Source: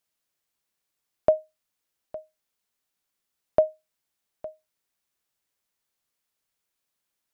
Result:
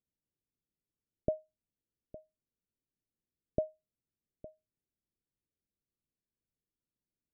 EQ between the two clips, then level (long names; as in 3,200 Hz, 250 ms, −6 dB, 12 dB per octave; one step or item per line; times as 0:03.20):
Gaussian smoothing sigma 22 samples
+3.0 dB